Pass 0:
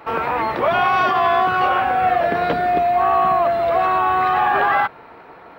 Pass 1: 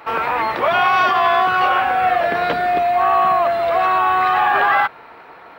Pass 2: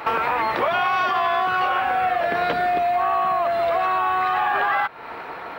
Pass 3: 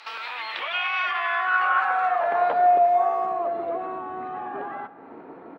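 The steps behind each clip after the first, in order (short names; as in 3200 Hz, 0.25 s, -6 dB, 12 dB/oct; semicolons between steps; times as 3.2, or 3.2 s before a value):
tilt shelf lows -4.5 dB, about 660 Hz
compressor 5:1, threshold -27 dBFS, peak gain reduction 13.5 dB; gain +7 dB
band-pass sweep 4700 Hz -> 270 Hz, 0.02–4.02; speakerphone echo 0.28 s, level -21 dB; on a send at -16 dB: reverb RT60 1.6 s, pre-delay 20 ms; on the sum: gain +4.5 dB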